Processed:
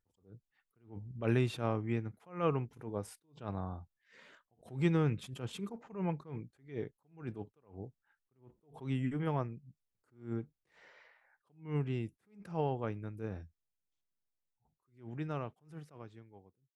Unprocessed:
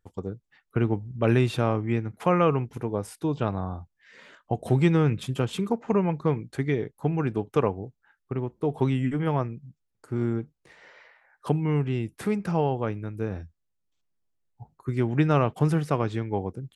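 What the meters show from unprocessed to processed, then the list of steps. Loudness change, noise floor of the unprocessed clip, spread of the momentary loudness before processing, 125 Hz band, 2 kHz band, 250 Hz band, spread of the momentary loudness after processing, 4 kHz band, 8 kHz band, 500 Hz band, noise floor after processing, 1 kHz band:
-11.0 dB, -77 dBFS, 13 LU, -12.0 dB, -11.5 dB, -12.0 dB, 19 LU, -10.5 dB, n/a, -13.0 dB, under -85 dBFS, -13.0 dB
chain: ending faded out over 3.66 s; attack slew limiter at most 160 dB/s; gain -8.5 dB

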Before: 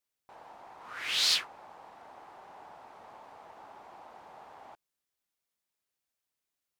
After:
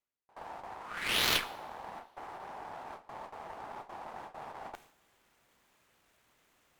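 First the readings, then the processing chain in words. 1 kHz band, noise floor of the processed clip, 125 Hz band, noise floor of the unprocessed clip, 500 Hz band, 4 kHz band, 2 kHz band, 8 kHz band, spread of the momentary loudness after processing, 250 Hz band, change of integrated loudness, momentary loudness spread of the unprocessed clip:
+5.5 dB, -71 dBFS, +13.0 dB, under -85 dBFS, +7.0 dB, -3.5 dB, +3.0 dB, -3.0 dB, 19 LU, +10.5 dB, -9.0 dB, 21 LU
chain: median filter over 9 samples; gate with hold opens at -42 dBFS; reverse; upward compressor, threshold -39 dBFS; reverse; added harmonics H 3 -14 dB, 4 -19 dB, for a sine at -22.5 dBFS; two-slope reverb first 0.64 s, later 2.7 s, from -21 dB, DRR 14 dB; gain +9 dB

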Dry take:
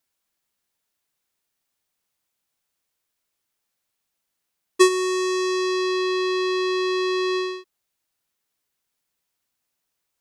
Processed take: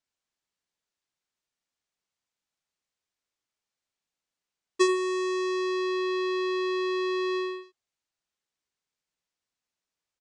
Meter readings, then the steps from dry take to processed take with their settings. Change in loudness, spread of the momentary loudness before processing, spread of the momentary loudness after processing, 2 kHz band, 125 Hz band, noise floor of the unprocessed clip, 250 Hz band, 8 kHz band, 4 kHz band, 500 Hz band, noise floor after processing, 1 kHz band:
-5.5 dB, 8 LU, 5 LU, -6.0 dB, n/a, -79 dBFS, -5.0 dB, -10.5 dB, -8.5 dB, -5.0 dB, under -85 dBFS, -5.5 dB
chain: LPF 7900 Hz 24 dB/oct; echo 81 ms -9 dB; gain -7.5 dB

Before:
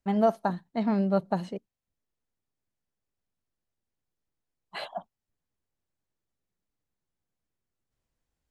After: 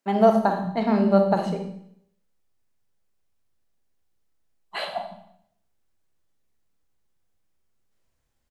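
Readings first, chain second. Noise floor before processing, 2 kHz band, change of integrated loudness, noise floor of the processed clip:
under -85 dBFS, +7.5 dB, +6.0 dB, -73 dBFS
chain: bands offset in time highs, lows 0.14 s, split 210 Hz; Schroeder reverb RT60 0.68 s, combs from 29 ms, DRR 4 dB; gain +6 dB

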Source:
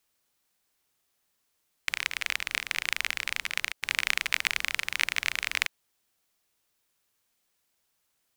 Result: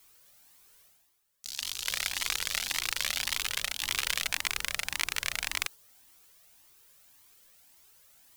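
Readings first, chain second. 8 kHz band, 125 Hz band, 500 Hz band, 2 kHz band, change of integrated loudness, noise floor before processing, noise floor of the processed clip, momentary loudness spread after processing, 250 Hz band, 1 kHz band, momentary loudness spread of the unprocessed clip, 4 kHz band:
+4.5 dB, n/a, +0.5 dB, -5.0 dB, -1.5 dB, -76 dBFS, -67 dBFS, 5 LU, +0.5 dB, -1.0 dB, 5 LU, +0.5 dB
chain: spectral noise reduction 8 dB; in parallel at +2 dB: limiter -10.5 dBFS, peak gain reduction 8.5 dB; on the sum: echoes that change speed 0.259 s, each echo +6 st, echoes 3, each echo -6 dB; high shelf 9000 Hz +6 dB; reverse; upward compressor, threshold -39 dBFS; reverse; dynamic EQ 2200 Hz, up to -7 dB, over -37 dBFS, Q 1.1; cascading flanger rising 1.8 Hz

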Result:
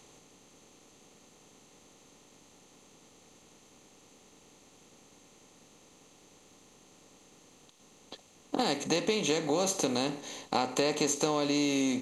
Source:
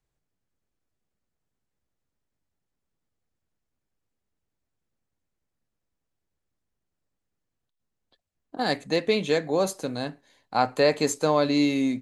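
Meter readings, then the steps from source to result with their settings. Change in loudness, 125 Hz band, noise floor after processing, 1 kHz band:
-5.0 dB, -6.0 dB, -60 dBFS, -5.5 dB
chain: per-bin compression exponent 0.6; thirty-one-band EQ 125 Hz -5 dB, 630 Hz -6 dB, 1600 Hz -10 dB, 3150 Hz +7 dB, 6300 Hz +10 dB; compressor 6:1, threshold -25 dBFS, peak gain reduction 9.5 dB

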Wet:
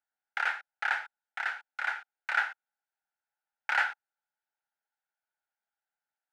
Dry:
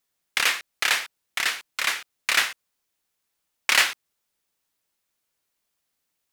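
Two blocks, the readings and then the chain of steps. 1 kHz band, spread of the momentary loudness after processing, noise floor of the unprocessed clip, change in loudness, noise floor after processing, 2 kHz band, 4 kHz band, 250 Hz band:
-2.5 dB, 11 LU, -79 dBFS, -9.0 dB, under -85 dBFS, -6.0 dB, -20.0 dB, under -20 dB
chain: dynamic EQ 1100 Hz, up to +4 dB, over -33 dBFS, Q 1; double band-pass 1100 Hz, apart 0.79 oct

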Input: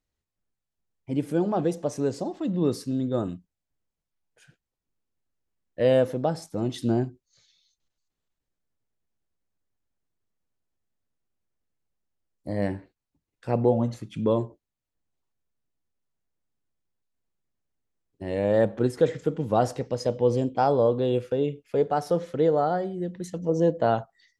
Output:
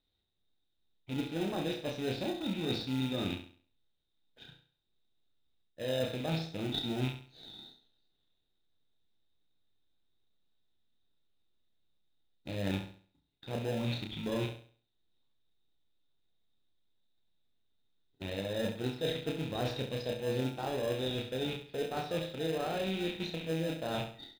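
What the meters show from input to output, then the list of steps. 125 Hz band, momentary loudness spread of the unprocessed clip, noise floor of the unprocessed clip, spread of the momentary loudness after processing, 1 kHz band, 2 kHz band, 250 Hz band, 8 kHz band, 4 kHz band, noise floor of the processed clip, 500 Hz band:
-8.0 dB, 10 LU, under -85 dBFS, 11 LU, -13.0 dB, -1.5 dB, -9.0 dB, n/a, +5.5 dB, -79 dBFS, -12.0 dB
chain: rattling part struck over -36 dBFS, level -31 dBFS; ladder low-pass 3800 Hz, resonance 90%; reverse; compressor 6:1, threshold -43 dBFS, peak gain reduction 14.5 dB; reverse; doubler 31 ms -4 dB; in parallel at -7 dB: sample-and-hold 39×; on the sum: flutter echo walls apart 11.6 m, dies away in 0.45 s; gain +8 dB

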